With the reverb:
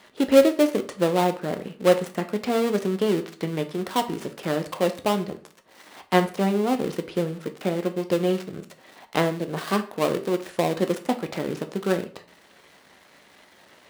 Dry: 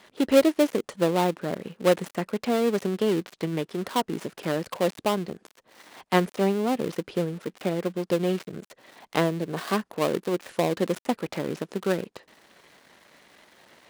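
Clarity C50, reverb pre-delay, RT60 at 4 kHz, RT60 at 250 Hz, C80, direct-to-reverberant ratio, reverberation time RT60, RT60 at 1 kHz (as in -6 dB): 14.0 dB, 8 ms, 0.35 s, 0.55 s, 18.5 dB, 7.0 dB, 0.45 s, 0.40 s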